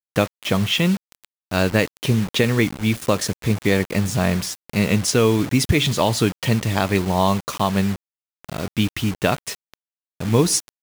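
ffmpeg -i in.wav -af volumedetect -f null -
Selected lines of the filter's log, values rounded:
mean_volume: -20.8 dB
max_volume: -5.6 dB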